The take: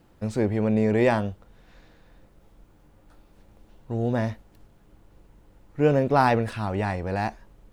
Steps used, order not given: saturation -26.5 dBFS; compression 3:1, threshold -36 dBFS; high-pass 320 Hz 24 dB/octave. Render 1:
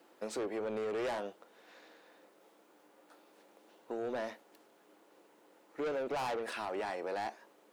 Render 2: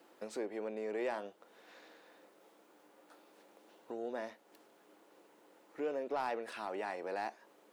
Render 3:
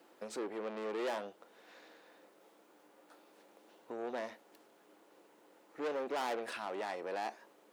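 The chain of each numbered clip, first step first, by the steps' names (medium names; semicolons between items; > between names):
high-pass > saturation > compression; compression > high-pass > saturation; saturation > compression > high-pass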